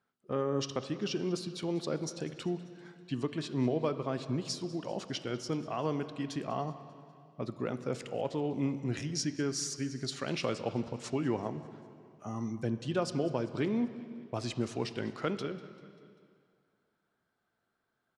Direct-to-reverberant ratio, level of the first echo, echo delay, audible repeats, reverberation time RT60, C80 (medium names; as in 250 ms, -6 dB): 10.5 dB, -20.0 dB, 196 ms, 4, 2.2 s, 12.0 dB